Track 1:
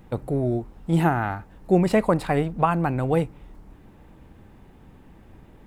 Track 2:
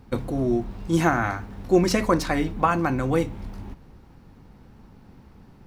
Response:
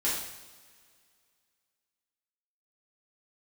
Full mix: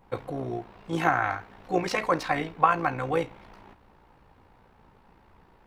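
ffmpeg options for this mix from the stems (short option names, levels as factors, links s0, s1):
-filter_complex "[0:a]equalizer=f=970:w=2.5:g=11.5,volume=0.266[s0];[1:a]acrossover=split=330 3800:gain=0.141 1 0.2[s1][s2][s3];[s1][s2][s3]amix=inputs=3:normalize=0,tremolo=f=58:d=0.667,adynamicequalizer=threshold=0.0158:dfrequency=1800:dqfactor=0.7:tfrequency=1800:tqfactor=0.7:attack=5:release=100:ratio=0.375:range=1.5:mode=boostabove:tftype=highshelf,volume=1.19[s4];[s0][s4]amix=inputs=2:normalize=0,equalizer=f=270:t=o:w=1.4:g=-4"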